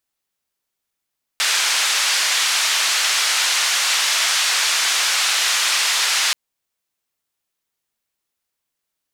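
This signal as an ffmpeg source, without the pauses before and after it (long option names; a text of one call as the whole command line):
ffmpeg -f lavfi -i "anoisesrc=color=white:duration=4.93:sample_rate=44100:seed=1,highpass=frequency=1200,lowpass=frequency=6000,volume=-7.3dB" out.wav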